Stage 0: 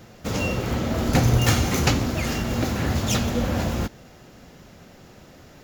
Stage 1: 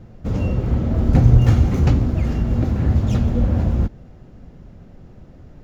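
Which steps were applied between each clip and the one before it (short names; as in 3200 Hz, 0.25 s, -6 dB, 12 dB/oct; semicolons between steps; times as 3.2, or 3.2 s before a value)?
tilt -4 dB/oct; gain -5.5 dB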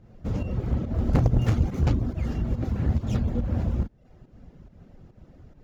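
reverb removal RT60 0.52 s; pump 141 bpm, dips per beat 1, -10 dB, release 0.17 s; added harmonics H 5 -22 dB, 6 -11 dB, 8 -15 dB, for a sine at -1.5 dBFS; gain -8 dB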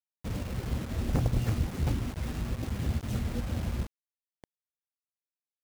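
bit-crush 6-bit; gain -6.5 dB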